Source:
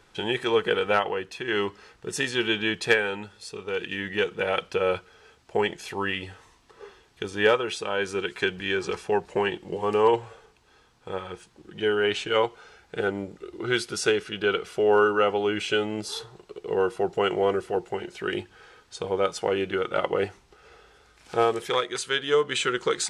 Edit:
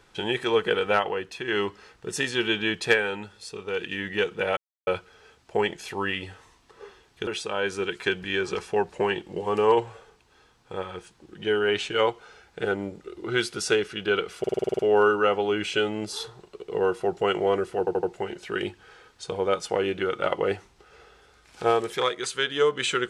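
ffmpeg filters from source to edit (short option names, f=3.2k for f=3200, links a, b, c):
-filter_complex "[0:a]asplit=15[a][b][c][d][e][f][g][h][i][j][k][l][m][n][o];[a]atrim=end=4.57,asetpts=PTS-STARTPTS,afade=t=out:st=4.566:d=0.004:c=hsin[p];[b]atrim=start=4.57:end=4.87,asetpts=PTS-STARTPTS,volume=0[q];[c]atrim=start=4.87:end=7.272,asetpts=PTS-STARTPTS,afade=t=in:d=0.004:c=hsin[r];[d]atrim=start=7.628:end=14.802[s];[e]atrim=start=14.748:end=14.802[t];[f]atrim=start=14.748:end=14.802[u];[g]atrim=start=14.748:end=14.802[v];[h]atrim=start=14.748:end=14.802[w];[i]atrim=start=14.748:end=14.802[x];[j]atrim=start=14.748:end=14.802[y];[k]atrim=start=14.748:end=14.802[z];[l]atrim=start=14.748:end=17.832[aa];[m]atrim=start=17.748:end=17.832[ab];[n]atrim=start=17.748:end=17.832[ac];[o]atrim=start=17.748[ad];[p][q][r]concat=n=3:v=0:a=1[ae];[ae][s]acrossfade=d=0.004:c1=hsin:c2=hsin[af];[af][t]acrossfade=d=0.004:c1=hsin:c2=hsin[ag];[ag][u]acrossfade=d=0.004:c1=hsin:c2=hsin[ah];[ah][v]acrossfade=d=0.004:c1=hsin:c2=hsin[ai];[ai][w]acrossfade=d=0.004:c1=hsin:c2=hsin[aj];[aj][x]acrossfade=d=0.004:c1=hsin:c2=hsin[ak];[ak][y]acrossfade=d=0.004:c1=hsin:c2=hsin[al];[al][z]acrossfade=d=0.004:c1=hsin:c2=hsin[am];[am][aa]acrossfade=d=0.004:c1=hsin:c2=hsin[an];[an][ab]acrossfade=d=0.004:c1=hsin:c2=hsin[ao];[ao][ac]acrossfade=d=0.004:c1=hsin:c2=hsin[ap];[ap][ad]acrossfade=d=0.004:c1=hsin:c2=hsin"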